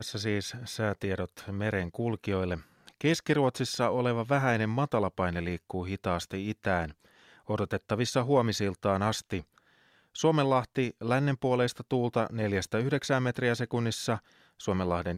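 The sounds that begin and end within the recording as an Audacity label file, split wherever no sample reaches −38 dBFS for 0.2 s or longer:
2.870000	6.910000	sound
7.490000	9.400000	sound
10.150000	14.180000	sound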